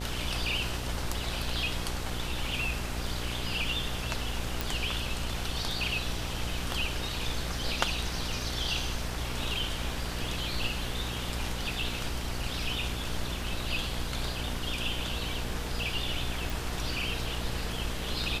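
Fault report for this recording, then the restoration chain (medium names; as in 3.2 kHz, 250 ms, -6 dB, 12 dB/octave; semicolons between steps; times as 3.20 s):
buzz 60 Hz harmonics 15 -37 dBFS
4.61 s: pop
16.50 s: pop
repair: de-click; de-hum 60 Hz, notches 15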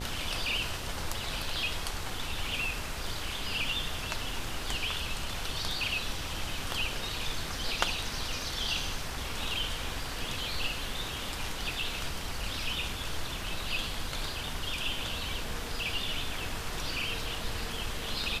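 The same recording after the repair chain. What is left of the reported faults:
nothing left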